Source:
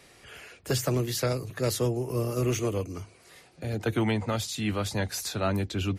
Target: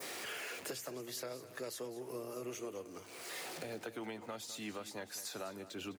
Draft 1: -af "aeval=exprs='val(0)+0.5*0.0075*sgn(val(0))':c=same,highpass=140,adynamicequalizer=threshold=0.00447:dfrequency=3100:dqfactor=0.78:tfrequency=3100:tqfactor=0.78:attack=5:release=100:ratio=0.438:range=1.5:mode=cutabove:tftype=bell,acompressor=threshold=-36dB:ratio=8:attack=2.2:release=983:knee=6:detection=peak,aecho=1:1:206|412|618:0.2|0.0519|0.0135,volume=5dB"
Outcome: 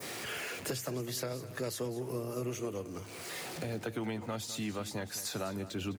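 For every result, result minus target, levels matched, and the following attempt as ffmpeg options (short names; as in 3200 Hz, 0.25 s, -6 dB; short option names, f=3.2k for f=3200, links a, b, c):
125 Hz band +10.0 dB; compressor: peak gain reduction -5.5 dB
-af "aeval=exprs='val(0)+0.5*0.0075*sgn(val(0))':c=same,highpass=310,adynamicequalizer=threshold=0.00447:dfrequency=3100:dqfactor=0.78:tfrequency=3100:tqfactor=0.78:attack=5:release=100:ratio=0.438:range=1.5:mode=cutabove:tftype=bell,acompressor=threshold=-36dB:ratio=8:attack=2.2:release=983:knee=6:detection=peak,aecho=1:1:206|412|618:0.2|0.0519|0.0135,volume=5dB"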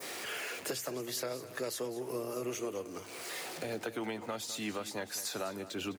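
compressor: peak gain reduction -6 dB
-af "aeval=exprs='val(0)+0.5*0.0075*sgn(val(0))':c=same,highpass=310,adynamicequalizer=threshold=0.00447:dfrequency=3100:dqfactor=0.78:tfrequency=3100:tqfactor=0.78:attack=5:release=100:ratio=0.438:range=1.5:mode=cutabove:tftype=bell,acompressor=threshold=-43dB:ratio=8:attack=2.2:release=983:knee=6:detection=peak,aecho=1:1:206|412|618:0.2|0.0519|0.0135,volume=5dB"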